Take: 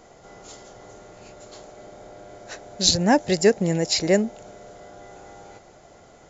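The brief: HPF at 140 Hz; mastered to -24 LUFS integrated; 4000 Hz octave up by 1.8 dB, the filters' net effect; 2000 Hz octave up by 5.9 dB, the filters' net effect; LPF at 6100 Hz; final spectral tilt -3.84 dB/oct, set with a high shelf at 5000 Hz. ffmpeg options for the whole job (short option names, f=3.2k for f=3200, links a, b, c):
-af "highpass=140,lowpass=6.1k,equalizer=f=2k:t=o:g=7,equalizer=f=4k:t=o:g=5,highshelf=f=5k:g=-7,volume=-4dB"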